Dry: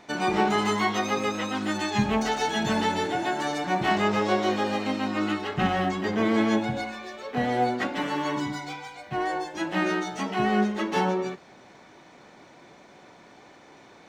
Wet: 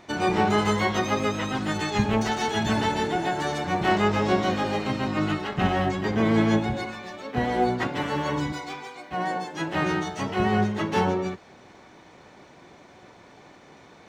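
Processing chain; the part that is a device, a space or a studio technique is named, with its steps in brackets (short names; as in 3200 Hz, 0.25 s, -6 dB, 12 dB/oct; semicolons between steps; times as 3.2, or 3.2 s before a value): 8.52–9.83 HPF 220 Hz 12 dB/oct; octave pedal (harmoniser -12 st -5 dB)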